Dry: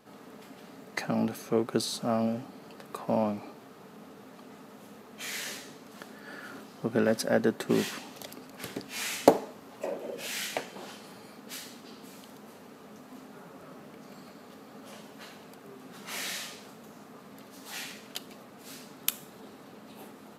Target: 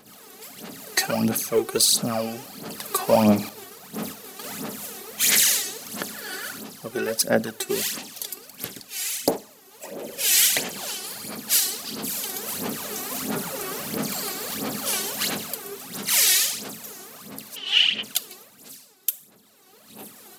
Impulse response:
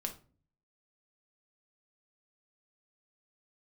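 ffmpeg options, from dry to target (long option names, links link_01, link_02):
-filter_complex "[0:a]aphaser=in_gain=1:out_gain=1:delay=2.7:decay=0.69:speed=1.5:type=sinusoidal,asettb=1/sr,asplit=3[link_01][link_02][link_03];[link_01]atrim=end=3.494[link_04];[link_02]atrim=start=3.49:end=4.44,asetpts=PTS-STARTPTS,afade=type=in:duration=0.004:curve=qsin,afade=type=out:start_time=0.946:duration=0.004:curve=qsin,agate=range=-33dB:threshold=-42dB:ratio=3:detection=peak[link_05];[link_03]atrim=start=4.436[link_06];[link_04][link_05]acrossfade=duration=0.004:curve1=hsin:curve2=qsin[link_07];[link_07][link_06]acrossfade=duration=0.004:curve1=qsin:curve2=hsin,crystalizer=i=6.5:c=0,asplit=3[link_08][link_09][link_10];[link_08]afade=type=out:start_time=17.55:duration=0.02[link_11];[link_09]lowpass=frequency=3000:width_type=q:width=14,afade=type=in:start_time=17.55:duration=0.02,afade=type=out:start_time=18.02:duration=0.02[link_12];[link_10]afade=type=in:start_time=18.02:duration=0.02[link_13];[link_11][link_12][link_13]amix=inputs=3:normalize=0,asplit=2[link_14][link_15];[1:a]atrim=start_sample=2205,lowpass=frequency=1300:width=0.5412,lowpass=frequency=1300:width=1.3066[link_16];[link_15][link_16]afir=irnorm=-1:irlink=0,volume=-15dB[link_17];[link_14][link_17]amix=inputs=2:normalize=0,dynaudnorm=framelen=110:gausssize=13:maxgain=15dB,volume=-4.5dB"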